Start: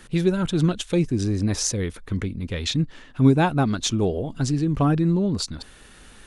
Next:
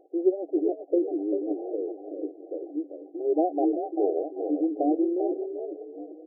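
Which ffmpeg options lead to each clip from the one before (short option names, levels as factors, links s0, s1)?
-filter_complex "[0:a]asplit=5[s0][s1][s2][s3][s4];[s1]adelay=391,afreqshift=49,volume=0.398[s5];[s2]adelay=782,afreqshift=98,volume=0.135[s6];[s3]adelay=1173,afreqshift=147,volume=0.0462[s7];[s4]adelay=1564,afreqshift=196,volume=0.0157[s8];[s0][s5][s6][s7][s8]amix=inputs=5:normalize=0,acrusher=samples=5:mix=1:aa=0.000001,afftfilt=real='re*between(b*sr/4096,280,800)':imag='im*between(b*sr/4096,280,800)':win_size=4096:overlap=0.75"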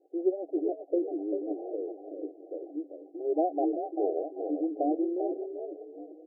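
-af "adynamicequalizer=threshold=0.01:dfrequency=660:dqfactor=2.3:tfrequency=660:tqfactor=2.3:attack=5:release=100:ratio=0.375:range=2:mode=boostabove:tftype=bell,volume=0.562"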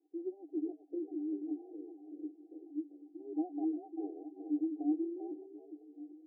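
-filter_complex "[0:a]asplit=3[s0][s1][s2];[s0]bandpass=f=300:t=q:w=8,volume=1[s3];[s1]bandpass=f=870:t=q:w=8,volume=0.501[s4];[s2]bandpass=f=2240:t=q:w=8,volume=0.355[s5];[s3][s4][s5]amix=inputs=3:normalize=0,volume=0.891"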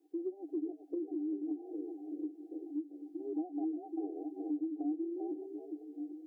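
-af "acompressor=threshold=0.00708:ratio=3,volume=2.24"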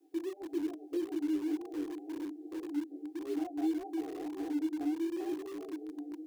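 -filter_complex "[0:a]flanger=delay=17.5:depth=5.6:speed=1.8,acrossover=split=250|370|420[s0][s1][s2][s3];[s2]aeval=exprs='(mod(750*val(0)+1,2)-1)/750':c=same[s4];[s0][s1][s4][s3]amix=inputs=4:normalize=0,volume=2.37"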